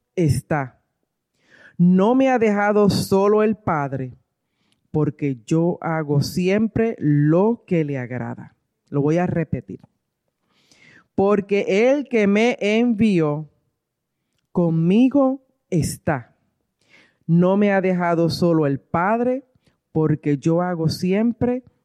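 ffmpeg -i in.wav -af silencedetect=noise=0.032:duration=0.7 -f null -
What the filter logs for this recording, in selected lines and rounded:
silence_start: 0.67
silence_end: 1.79 | silence_duration: 1.13
silence_start: 4.08
silence_end: 4.94 | silence_duration: 0.86
silence_start: 9.75
silence_end: 11.18 | silence_duration: 1.43
silence_start: 13.43
silence_end: 14.55 | silence_duration: 1.13
silence_start: 16.20
silence_end: 17.29 | silence_duration: 1.08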